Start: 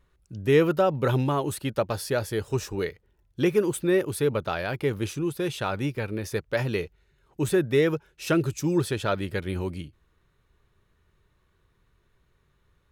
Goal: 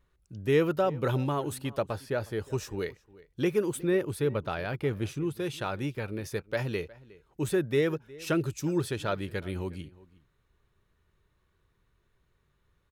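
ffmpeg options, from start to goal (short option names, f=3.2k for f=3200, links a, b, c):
-filter_complex "[0:a]asettb=1/sr,asplit=3[a][b][c];[a]atrim=end=1.884[d];[b]atrim=start=1.88:end=2.45,asetpts=PTS-STARTPTS,afade=t=in:d=0.004:c=qsin,afade=t=out:st=0.566:d=0.004:c=qsin,acrossover=split=2800[e][f];[f]acompressor=threshold=-46dB:ratio=4:attack=1:release=60[g];[e][g]amix=inputs=2:normalize=0[h];[c]atrim=start=2.446[i];[d][h]acrossfade=d=0.004:c1=hsin:c2=qsin[j];[j][i]acrossfade=d=0.004:c1=qsin:c2=hsin,asettb=1/sr,asplit=3[k][l][m];[k]atrim=end=3.834[n];[l]atrim=start=3.83:end=5.38,asetpts=PTS-STARTPTS,afade=t=in:d=0.004:c=qsin,afade=t=out:st=1.546:d=0.004:c=qsin,bass=f=250:g=3,treble=f=4k:g=-4[o];[m]atrim=start=5.376[p];[n][o]acrossfade=d=0.004:c1=hsin:c2=qsin[q];[q][p]acrossfade=d=0.004:c1=qsin:c2=hsin,asplit=2[r][s];[s]adelay=361.5,volume=-21dB,highshelf=f=4k:g=-8.13[t];[r][t]amix=inputs=2:normalize=0,volume=-4.5dB"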